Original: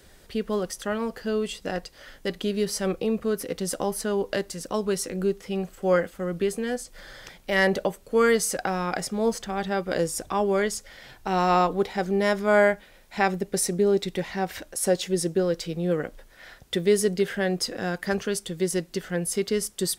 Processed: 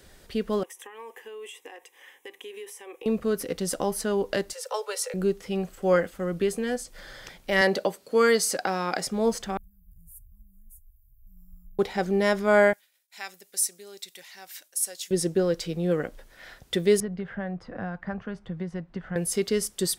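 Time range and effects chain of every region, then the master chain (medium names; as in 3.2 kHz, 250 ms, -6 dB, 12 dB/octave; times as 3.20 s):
0.63–3.06 s: high-pass 570 Hz + compression 12:1, threshold -34 dBFS + static phaser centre 930 Hz, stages 8
4.53–5.14 s: steep high-pass 450 Hz 96 dB/octave + comb 2.2 ms, depth 55%
7.61–9.06 s: high-pass 200 Hz + peaking EQ 4.5 kHz +7 dB 0.34 oct
9.57–11.79 s: inverse Chebyshev band-stop 340–4600 Hz, stop band 70 dB + peaking EQ 3.2 kHz +7.5 dB 2.4 oct
12.73–15.11 s: expander -47 dBFS + differentiator
17.00–19.16 s: low-pass 1.1 kHz + peaking EQ 390 Hz -14.5 dB 1.2 oct + three bands compressed up and down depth 100%
whole clip: none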